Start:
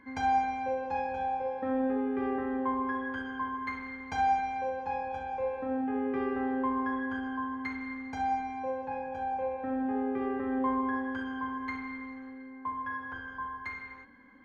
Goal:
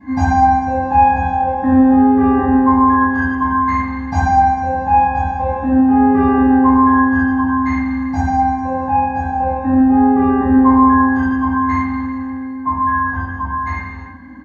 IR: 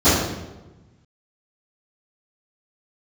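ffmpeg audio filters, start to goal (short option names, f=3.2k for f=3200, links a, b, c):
-filter_complex "[0:a]aecho=1:1:1.1:0.85[a];[1:a]atrim=start_sample=2205,atrim=end_sample=6615[b];[a][b]afir=irnorm=-1:irlink=0,volume=-9dB"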